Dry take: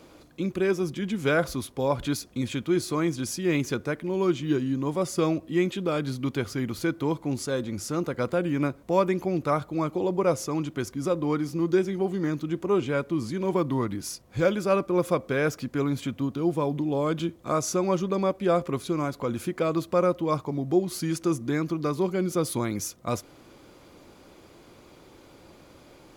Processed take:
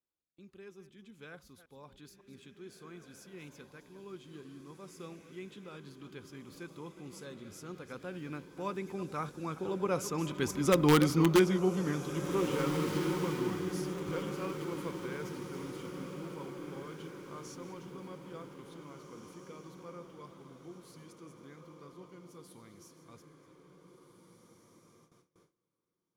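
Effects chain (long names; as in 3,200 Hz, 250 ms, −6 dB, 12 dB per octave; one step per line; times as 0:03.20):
delay that plays each chunk backwards 191 ms, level −13.5 dB
source passing by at 0:10.99, 12 m/s, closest 3.6 metres
in parallel at −6 dB: wrap-around overflow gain 18.5 dB
on the sum: thirty-one-band graphic EQ 125 Hz −5 dB, 315 Hz −5 dB, 630 Hz −11 dB, 3,150 Hz +3 dB
on a send: feedback delay with all-pass diffusion 1,871 ms, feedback 42%, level −7 dB
on the sum: noise gate with hold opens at −56 dBFS
level +2.5 dB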